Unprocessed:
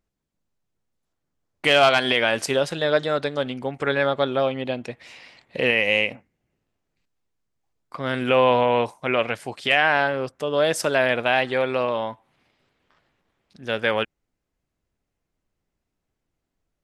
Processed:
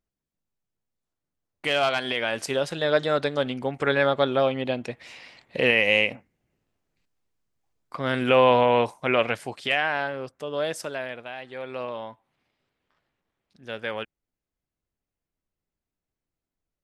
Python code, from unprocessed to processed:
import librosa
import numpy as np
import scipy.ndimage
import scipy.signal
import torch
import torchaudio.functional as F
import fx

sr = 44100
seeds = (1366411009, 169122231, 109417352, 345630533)

y = fx.gain(x, sr, db=fx.line((2.13, -7.0), (3.15, 0.0), (9.35, 0.0), (9.91, -7.0), (10.65, -7.0), (11.37, -18.0), (11.81, -9.0)))